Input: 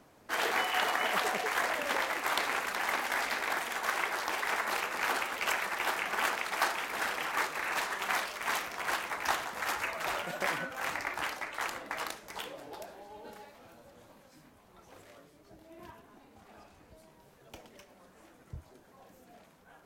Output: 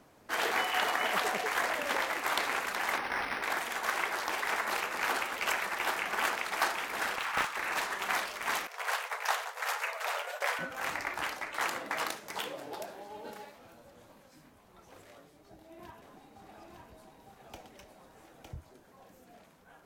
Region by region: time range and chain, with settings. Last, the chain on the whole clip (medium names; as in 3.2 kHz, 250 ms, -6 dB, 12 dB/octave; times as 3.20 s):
2.98–3.43 s: peaking EQ 650 Hz -5 dB 0.22 oct + decimation joined by straight lines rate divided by 6×
7.16–7.57 s: resonant low shelf 740 Hz -8.5 dB, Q 1.5 + loudspeaker Doppler distortion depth 0.36 ms
8.67–10.59 s: expander -38 dBFS + brick-wall FIR high-pass 400 Hz
11.54–13.55 s: high-pass 110 Hz + waveshaping leveller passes 1
15.11–18.54 s: small resonant body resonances 780/3800 Hz, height 8 dB + delay 908 ms -4 dB
whole clip: none